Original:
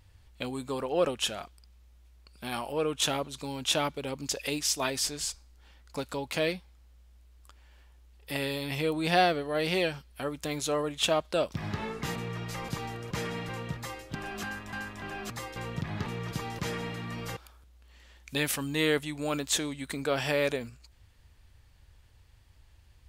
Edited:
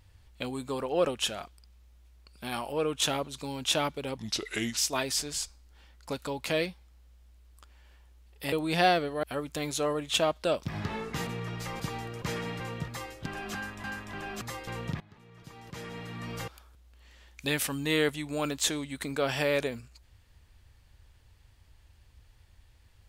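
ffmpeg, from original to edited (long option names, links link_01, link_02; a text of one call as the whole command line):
ffmpeg -i in.wav -filter_complex "[0:a]asplit=6[link_01][link_02][link_03][link_04][link_05][link_06];[link_01]atrim=end=4.174[link_07];[link_02]atrim=start=4.17:end=4.64,asetpts=PTS-STARTPTS,asetrate=34398,aresample=44100,atrim=end_sample=26573,asetpts=PTS-STARTPTS[link_08];[link_03]atrim=start=4.636:end=8.392[link_09];[link_04]atrim=start=8.858:end=9.572[link_10];[link_05]atrim=start=10.118:end=15.89,asetpts=PTS-STARTPTS,afade=type=out:start_time=5.768:duration=0.004:curve=hsin:silence=0.0749894[link_11];[link_06]atrim=start=15.89,asetpts=PTS-STARTPTS,afade=type=in:duration=1.34:curve=qua:silence=0.0749894[link_12];[link_07][link_08]acrossfade=duration=0.004:curve1=hsin:curve2=hsin[link_13];[link_13][link_09]acrossfade=duration=0.004:curve1=hsin:curve2=hsin[link_14];[link_14][link_10]acrossfade=duration=0.004:curve1=hsin:curve2=hsin[link_15];[link_11][link_12]concat=n=2:v=0:a=1[link_16];[link_15][link_16]acrossfade=duration=0.004:curve1=hsin:curve2=hsin" out.wav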